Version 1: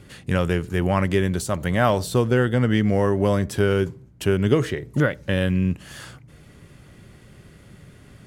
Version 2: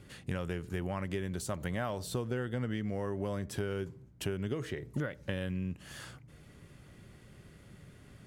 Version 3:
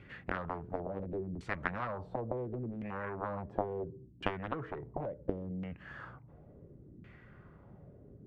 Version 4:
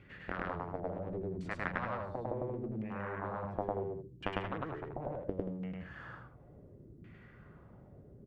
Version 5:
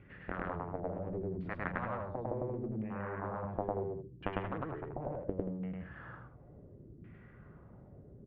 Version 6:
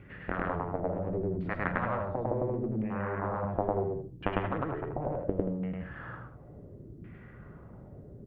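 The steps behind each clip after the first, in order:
compression, threshold -24 dBFS, peak gain reduction 11.5 dB; trim -7.5 dB
Chebyshev shaper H 3 -7 dB, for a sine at -20 dBFS; LFO low-pass saw down 0.71 Hz 270–2400 Hz; trim +8 dB
loudspeakers at several distances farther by 35 m 0 dB, 62 m -8 dB; trim -3.5 dB
distance through air 450 m; trim +1.5 dB
reverberation RT60 0.30 s, pre-delay 15 ms, DRR 12.5 dB; trim +6 dB

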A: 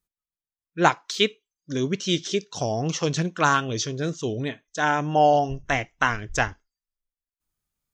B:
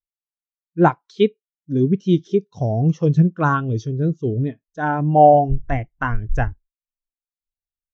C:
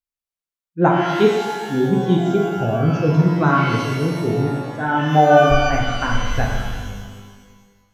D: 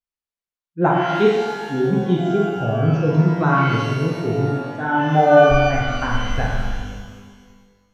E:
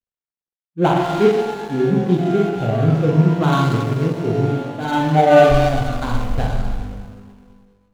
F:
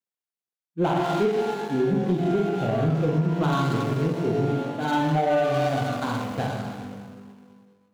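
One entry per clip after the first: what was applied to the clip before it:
tilt EQ -2.5 dB/octave; spectral contrast expander 1.5:1; trim +2 dB
pitch-shifted reverb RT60 1.6 s, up +12 st, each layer -8 dB, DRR -1 dB; trim -1.5 dB
treble shelf 7.5 kHz -10 dB; on a send: flutter echo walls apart 7.6 m, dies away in 0.43 s; on the sum: trim -2 dB
median filter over 25 samples; trim +2 dB
high-pass 130 Hz 24 dB/octave; compression 10:1, threshold -15 dBFS, peak gain reduction 10 dB; saturation -11 dBFS, distortion -22 dB; trim -2 dB

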